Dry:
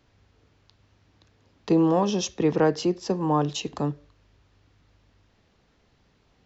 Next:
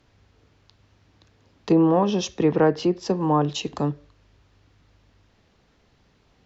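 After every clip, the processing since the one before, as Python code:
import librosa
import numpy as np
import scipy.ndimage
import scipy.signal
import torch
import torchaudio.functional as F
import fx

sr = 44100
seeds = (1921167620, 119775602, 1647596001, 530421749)

y = fx.env_lowpass_down(x, sr, base_hz=2500.0, full_db=-17.5)
y = y * librosa.db_to_amplitude(2.5)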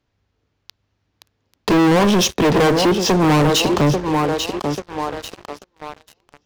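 y = fx.echo_thinned(x, sr, ms=840, feedback_pct=47, hz=320.0, wet_db=-10.5)
y = fx.leveller(y, sr, passes=5)
y = 10.0 ** (-9.0 / 20.0) * np.tanh(y / 10.0 ** (-9.0 / 20.0))
y = y * librosa.db_to_amplitude(-1.0)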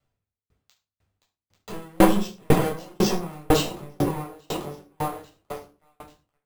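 y = fx.room_shoebox(x, sr, seeds[0], volume_m3=910.0, walls='furnished', distance_m=6.8)
y = np.repeat(y[::4], 4)[:len(y)]
y = fx.tremolo_decay(y, sr, direction='decaying', hz=2.0, depth_db=39)
y = y * librosa.db_to_amplitude(-8.5)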